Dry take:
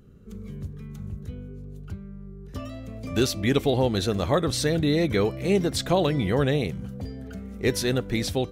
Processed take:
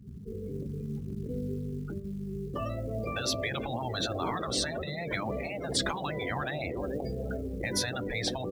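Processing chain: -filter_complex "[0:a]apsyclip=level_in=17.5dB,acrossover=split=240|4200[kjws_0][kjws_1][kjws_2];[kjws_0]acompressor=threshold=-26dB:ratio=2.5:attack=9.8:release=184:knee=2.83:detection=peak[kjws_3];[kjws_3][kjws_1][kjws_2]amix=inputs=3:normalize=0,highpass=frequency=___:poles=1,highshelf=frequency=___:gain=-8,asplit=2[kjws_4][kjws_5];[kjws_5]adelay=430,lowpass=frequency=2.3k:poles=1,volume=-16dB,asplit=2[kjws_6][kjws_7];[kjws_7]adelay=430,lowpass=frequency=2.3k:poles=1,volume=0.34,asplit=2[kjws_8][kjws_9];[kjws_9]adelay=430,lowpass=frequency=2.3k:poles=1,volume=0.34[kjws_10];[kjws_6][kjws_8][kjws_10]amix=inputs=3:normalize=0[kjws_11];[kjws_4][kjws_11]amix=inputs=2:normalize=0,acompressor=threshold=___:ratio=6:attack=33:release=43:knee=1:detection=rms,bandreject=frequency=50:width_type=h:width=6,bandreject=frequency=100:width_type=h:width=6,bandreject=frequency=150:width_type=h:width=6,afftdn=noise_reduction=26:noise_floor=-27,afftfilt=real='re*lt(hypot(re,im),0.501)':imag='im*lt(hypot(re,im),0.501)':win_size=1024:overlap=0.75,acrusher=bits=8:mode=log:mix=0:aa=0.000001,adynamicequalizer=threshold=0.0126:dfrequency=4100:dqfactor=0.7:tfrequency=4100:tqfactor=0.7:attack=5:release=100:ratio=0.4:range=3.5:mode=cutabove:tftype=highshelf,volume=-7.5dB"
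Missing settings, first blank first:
43, 2.1k, -17dB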